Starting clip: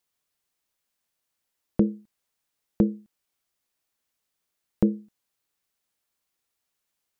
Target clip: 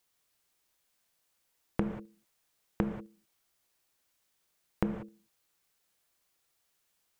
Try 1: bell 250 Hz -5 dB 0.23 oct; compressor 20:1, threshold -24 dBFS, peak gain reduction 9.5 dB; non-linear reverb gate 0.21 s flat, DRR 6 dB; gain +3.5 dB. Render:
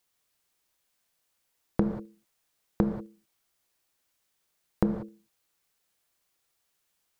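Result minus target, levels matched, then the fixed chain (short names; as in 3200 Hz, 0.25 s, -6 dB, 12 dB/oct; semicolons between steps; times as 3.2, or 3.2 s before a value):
compressor: peak gain reduction -6 dB
bell 250 Hz -5 dB 0.23 oct; compressor 20:1, threshold -30.5 dBFS, peak gain reduction 15.5 dB; non-linear reverb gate 0.21 s flat, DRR 6 dB; gain +3.5 dB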